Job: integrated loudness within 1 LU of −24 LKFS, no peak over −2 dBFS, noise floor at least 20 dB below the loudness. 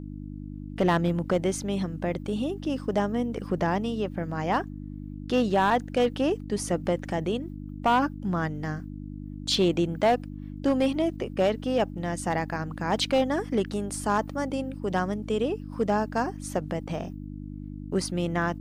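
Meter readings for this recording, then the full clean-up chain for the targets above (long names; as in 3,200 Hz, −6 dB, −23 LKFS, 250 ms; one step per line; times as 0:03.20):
share of clipped samples 0.5%; peaks flattened at −16.0 dBFS; mains hum 50 Hz; hum harmonics up to 300 Hz; level of the hum −36 dBFS; integrated loudness −27.5 LKFS; sample peak −16.0 dBFS; target loudness −24.0 LKFS
→ clipped peaks rebuilt −16 dBFS
hum removal 50 Hz, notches 6
level +3.5 dB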